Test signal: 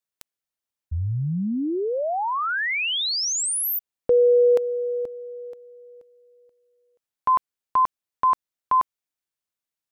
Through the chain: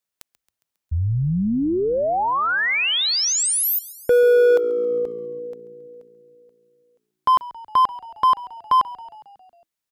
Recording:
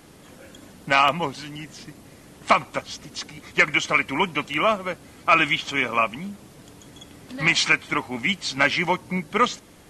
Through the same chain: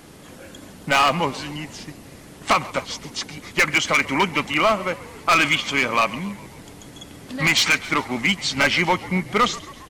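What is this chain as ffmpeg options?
ffmpeg -i in.wav -filter_complex "[0:a]acontrast=31,asoftclip=type=hard:threshold=-11dB,asplit=7[link_01][link_02][link_03][link_04][link_05][link_06][link_07];[link_02]adelay=136,afreqshift=-57,volume=-19dB[link_08];[link_03]adelay=272,afreqshift=-114,volume=-23.2dB[link_09];[link_04]adelay=408,afreqshift=-171,volume=-27.3dB[link_10];[link_05]adelay=544,afreqshift=-228,volume=-31.5dB[link_11];[link_06]adelay=680,afreqshift=-285,volume=-35.6dB[link_12];[link_07]adelay=816,afreqshift=-342,volume=-39.8dB[link_13];[link_01][link_08][link_09][link_10][link_11][link_12][link_13]amix=inputs=7:normalize=0,volume=-1dB" out.wav

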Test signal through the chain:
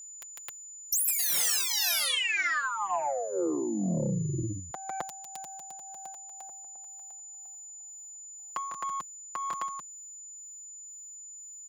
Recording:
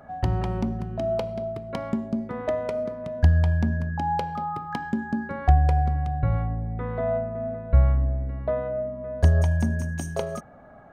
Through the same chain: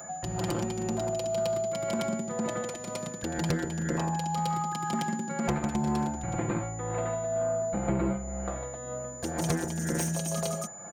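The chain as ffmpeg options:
ffmpeg -i in.wav -filter_complex "[0:a]acrossover=split=240|3000[link_01][link_02][link_03];[link_02]acompressor=threshold=-35dB:ratio=5[link_04];[link_01][link_04][link_03]amix=inputs=3:normalize=0,highshelf=frequency=3900:gain=9.5,aecho=1:1:151.6|262.4:0.631|1,tremolo=f=2:d=0.53,aeval=exprs='0.562*(cos(1*acos(clip(val(0)/0.562,-1,1)))-cos(1*PI/2))+0.224*(cos(2*acos(clip(val(0)/0.562,-1,1)))-cos(2*PI/2))+0.0891*(cos(3*acos(clip(val(0)/0.562,-1,1)))-cos(3*PI/2))+0.0794*(cos(5*acos(clip(val(0)/0.562,-1,1)))-cos(5*PI/2))+0.2*(cos(7*acos(clip(val(0)/0.562,-1,1)))-cos(7*PI/2))':channel_layout=same,asoftclip=type=tanh:threshold=-9dB,aecho=1:1:5.8:0.7,aeval=exprs='val(0)+0.00708*sin(2*PI*7000*n/s)':channel_layout=same,highpass=frequency=190:poles=1,acompressor=threshold=-25dB:ratio=5" out.wav

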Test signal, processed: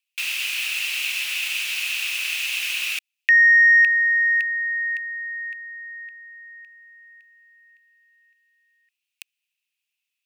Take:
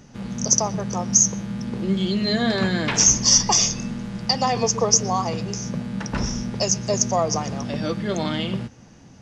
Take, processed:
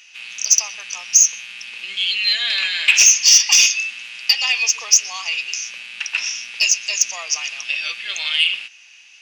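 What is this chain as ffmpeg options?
ffmpeg -i in.wav -af "highpass=frequency=2600:width_type=q:width=8.3,acontrast=55,volume=-1dB" out.wav

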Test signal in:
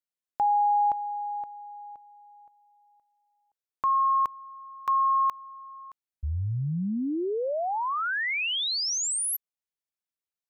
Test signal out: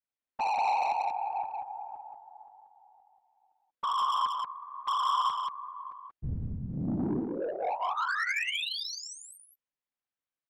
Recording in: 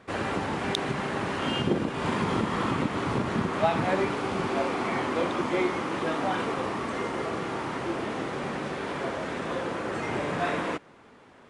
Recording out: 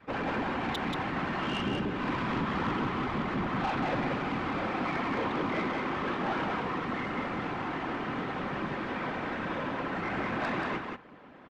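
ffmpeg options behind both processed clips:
ffmpeg -i in.wav -af "lowpass=2900,adynamicequalizer=threshold=0.00631:dfrequency=490:dqfactor=1.7:tfrequency=490:tqfactor=1.7:attack=5:release=100:ratio=0.375:range=3.5:mode=cutabove:tftype=bell,aecho=1:1:3.9:0.73,afftfilt=real='hypot(re,im)*cos(2*PI*random(0))':imag='hypot(re,im)*sin(2*PI*random(1))':win_size=512:overlap=0.75,asoftclip=type=tanh:threshold=-30.5dB,aecho=1:1:183:0.631,volume=4dB" out.wav

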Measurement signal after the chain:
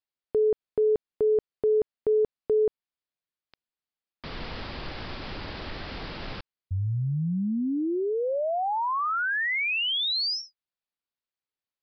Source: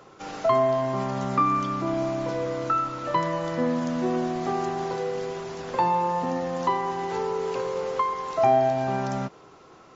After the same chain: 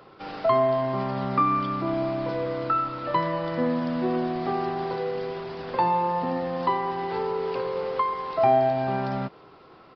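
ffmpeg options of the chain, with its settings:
ffmpeg -i in.wav -af "aresample=11025,aresample=44100" out.wav

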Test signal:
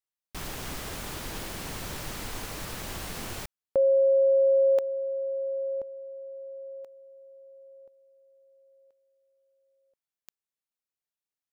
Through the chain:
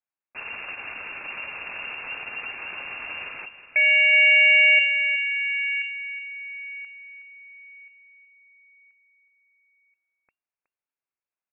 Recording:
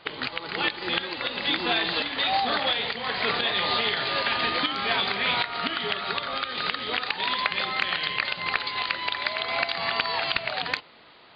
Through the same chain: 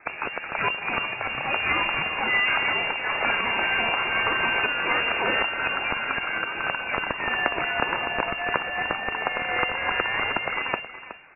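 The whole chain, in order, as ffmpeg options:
ffmpeg -i in.wav -filter_complex "[0:a]aeval=exprs='0.299*(cos(1*acos(clip(val(0)/0.299,-1,1)))-cos(1*PI/2))+0.0376*(cos(2*acos(clip(val(0)/0.299,-1,1)))-cos(2*PI/2))+0.0376*(cos(8*acos(clip(val(0)/0.299,-1,1)))-cos(8*PI/2))':channel_layout=same,equalizer=frequency=90:width=5.4:gain=-12.5,asplit=2[link_01][link_02];[link_02]aecho=0:1:369:0.237[link_03];[link_01][link_03]amix=inputs=2:normalize=0,afreqshift=19,asplit=2[link_04][link_05];[link_05]acrusher=bits=5:mode=log:mix=0:aa=0.000001,volume=-10dB[link_06];[link_04][link_06]amix=inputs=2:normalize=0,lowpass=frequency=2400:width_type=q:width=0.5098,lowpass=frequency=2400:width_type=q:width=0.6013,lowpass=frequency=2400:width_type=q:width=0.9,lowpass=frequency=2400:width_type=q:width=2.563,afreqshift=-2800,bandreject=frequency=1900:width=16" out.wav

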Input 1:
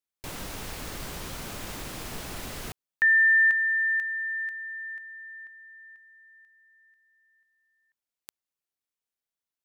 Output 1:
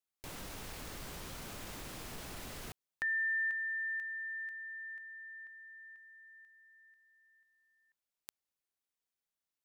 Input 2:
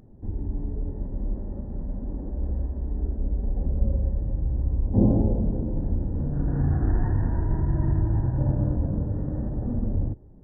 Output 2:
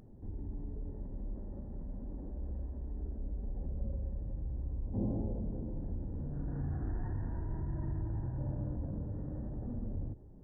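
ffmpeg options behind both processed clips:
ffmpeg -i in.wav -af "acompressor=threshold=-54dB:ratio=1.5:attack=4.5:release=27:detection=peak,volume=-2dB" out.wav

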